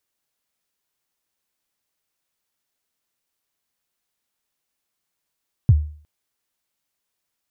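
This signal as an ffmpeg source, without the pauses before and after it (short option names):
-f lavfi -i "aevalsrc='0.501*pow(10,-3*t/0.46)*sin(2*PI*(140*0.042/log(75/140)*(exp(log(75/140)*min(t,0.042)/0.042)-1)+75*max(t-0.042,0)))':d=0.36:s=44100"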